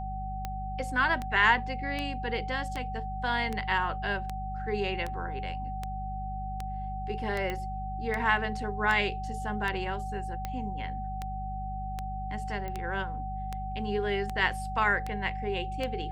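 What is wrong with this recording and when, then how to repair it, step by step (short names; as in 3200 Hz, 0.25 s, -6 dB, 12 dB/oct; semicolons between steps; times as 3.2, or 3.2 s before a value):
hum 50 Hz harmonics 4 -37 dBFS
tick 78 rpm -19 dBFS
tone 760 Hz -36 dBFS
7.5 pop -20 dBFS
12.68 pop -24 dBFS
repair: de-click; de-hum 50 Hz, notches 4; notch 760 Hz, Q 30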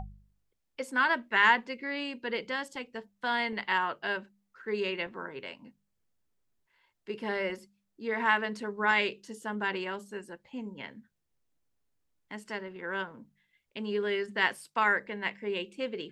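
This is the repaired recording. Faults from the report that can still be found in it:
none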